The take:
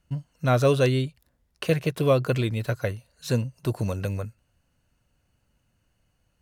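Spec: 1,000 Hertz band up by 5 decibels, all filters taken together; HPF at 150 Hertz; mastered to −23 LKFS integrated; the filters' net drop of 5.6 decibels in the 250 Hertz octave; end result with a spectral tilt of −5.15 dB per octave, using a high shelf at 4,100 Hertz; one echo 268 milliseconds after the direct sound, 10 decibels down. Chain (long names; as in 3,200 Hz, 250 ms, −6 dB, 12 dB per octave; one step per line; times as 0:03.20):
high-pass filter 150 Hz
parametric band 250 Hz −7 dB
parametric band 1,000 Hz +8 dB
high-shelf EQ 4,100 Hz −7 dB
single-tap delay 268 ms −10 dB
level +3.5 dB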